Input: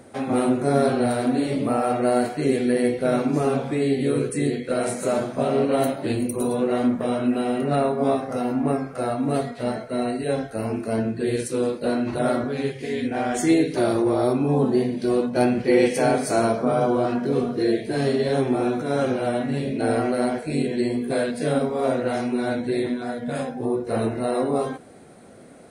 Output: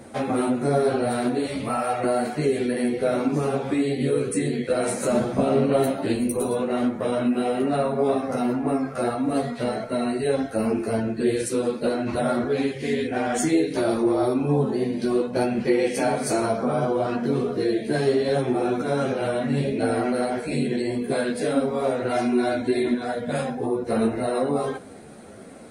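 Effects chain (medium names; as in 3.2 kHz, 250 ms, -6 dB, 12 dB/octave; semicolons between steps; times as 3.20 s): 1.46–2.04 s: peaking EQ 300 Hz -12 dB 1.5 oct; compression 2.5:1, threshold -25 dBFS, peak gain reduction 8.5 dB; 5.10–5.90 s: bass shelf 180 Hz +10 dB; 22.09–22.93 s: comb 2.9 ms, depth 64%; three-phase chorus; trim +7 dB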